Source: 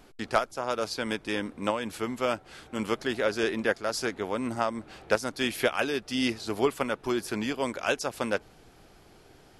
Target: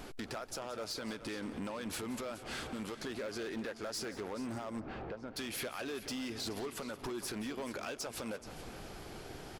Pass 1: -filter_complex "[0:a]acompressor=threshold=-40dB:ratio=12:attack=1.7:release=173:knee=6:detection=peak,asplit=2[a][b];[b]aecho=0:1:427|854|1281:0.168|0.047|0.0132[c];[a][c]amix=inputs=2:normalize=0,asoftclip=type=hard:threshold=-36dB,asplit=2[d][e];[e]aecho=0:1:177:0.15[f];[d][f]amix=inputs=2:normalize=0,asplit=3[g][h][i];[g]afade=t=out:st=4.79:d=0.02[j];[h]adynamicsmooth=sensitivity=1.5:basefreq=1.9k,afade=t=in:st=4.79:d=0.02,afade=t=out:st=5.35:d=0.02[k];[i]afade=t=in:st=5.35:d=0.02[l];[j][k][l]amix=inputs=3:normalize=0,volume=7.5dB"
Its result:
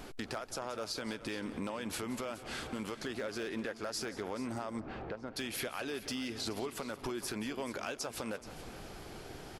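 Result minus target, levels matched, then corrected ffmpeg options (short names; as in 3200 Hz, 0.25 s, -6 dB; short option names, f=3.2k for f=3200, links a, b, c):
hard clip: distortion -11 dB
-filter_complex "[0:a]acompressor=threshold=-40dB:ratio=12:attack=1.7:release=173:knee=6:detection=peak,asplit=2[a][b];[b]aecho=0:1:427|854|1281:0.168|0.047|0.0132[c];[a][c]amix=inputs=2:normalize=0,asoftclip=type=hard:threshold=-42.5dB,asplit=2[d][e];[e]aecho=0:1:177:0.15[f];[d][f]amix=inputs=2:normalize=0,asplit=3[g][h][i];[g]afade=t=out:st=4.79:d=0.02[j];[h]adynamicsmooth=sensitivity=1.5:basefreq=1.9k,afade=t=in:st=4.79:d=0.02,afade=t=out:st=5.35:d=0.02[k];[i]afade=t=in:st=5.35:d=0.02[l];[j][k][l]amix=inputs=3:normalize=0,volume=7.5dB"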